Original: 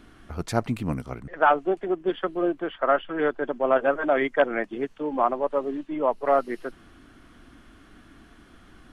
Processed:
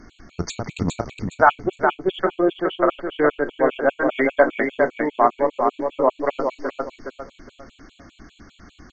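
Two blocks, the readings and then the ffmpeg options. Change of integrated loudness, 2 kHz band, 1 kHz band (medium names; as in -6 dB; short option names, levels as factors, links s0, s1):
+3.5 dB, +5.5 dB, +4.0 dB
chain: -filter_complex "[0:a]bass=f=250:g=1,treble=f=4000:g=7,asplit=2[s0][s1];[s1]adelay=34,volume=0.211[s2];[s0][s2]amix=inputs=2:normalize=0,aresample=16000,aresample=44100,aecho=1:1:415|830|1245|1660:0.596|0.167|0.0467|0.0131,afftfilt=real='re*gt(sin(2*PI*5*pts/sr)*(1-2*mod(floor(b*sr/1024/2200),2)),0)':imag='im*gt(sin(2*PI*5*pts/sr)*(1-2*mod(floor(b*sr/1024/2200),2)),0)':win_size=1024:overlap=0.75,volume=1.88"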